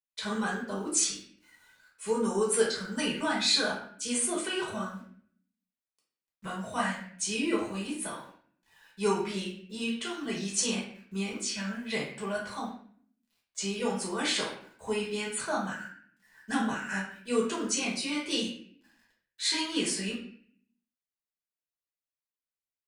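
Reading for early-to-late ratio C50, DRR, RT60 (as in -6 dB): 4.0 dB, -5.5 dB, 0.55 s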